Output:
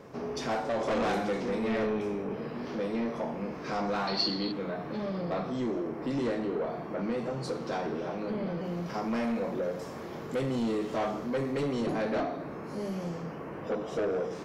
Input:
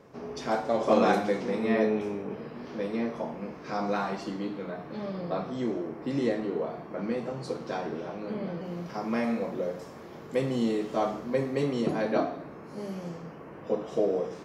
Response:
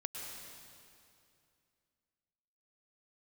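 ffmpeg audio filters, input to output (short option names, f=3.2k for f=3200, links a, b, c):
-filter_complex "[0:a]asplit=2[a][b];[b]acompressor=threshold=-38dB:ratio=6,volume=-2dB[c];[a][c]amix=inputs=2:normalize=0,asoftclip=type=tanh:threshold=-25.5dB,asettb=1/sr,asplit=3[d][e][f];[d]atrim=end=4.074[g];[e]atrim=start=4.07:end=4.52,asetpts=PTS-STARTPTS,afade=t=in:d=0.004:c=qsin,afade=t=out:st=0.446:d=0.004:c=qsin,lowpass=f=4.4k:t=q:w=13[h];[f]atrim=start=4.516[i];[g][h]acrossfade=d=0.004:c1=hsin:c2=qsin[j];[j][i]acrossfade=d=0.004:c1=qsin:c2=hsin"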